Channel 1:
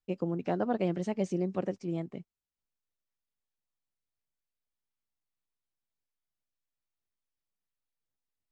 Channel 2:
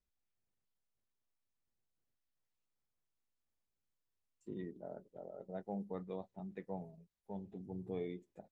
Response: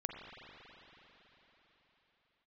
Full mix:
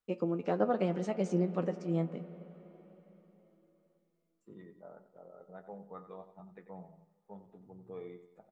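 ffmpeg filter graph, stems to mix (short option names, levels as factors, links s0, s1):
-filter_complex "[0:a]highpass=170,volume=1,asplit=2[s0][s1];[s1]volume=0.398[s2];[1:a]equalizer=f=1200:t=o:w=1.3:g=11.5,volume=0.531,asplit=3[s3][s4][s5];[s4]volume=0.0708[s6];[s5]volume=0.251[s7];[2:a]atrim=start_sample=2205[s8];[s2][s6]amix=inputs=2:normalize=0[s9];[s9][s8]afir=irnorm=-1:irlink=0[s10];[s7]aecho=0:1:91|182|273|364|455|546:1|0.42|0.176|0.0741|0.0311|0.0131[s11];[s0][s3][s10][s11]amix=inputs=4:normalize=0,equalizer=f=100:t=o:w=0.33:g=-4,equalizer=f=160:t=o:w=0.33:g=6,equalizer=f=500:t=o:w=0.33:g=5,equalizer=f=1250:t=o:w=0.33:g=6,flanger=delay=8.8:depth=3.3:regen=51:speed=0.25:shape=sinusoidal"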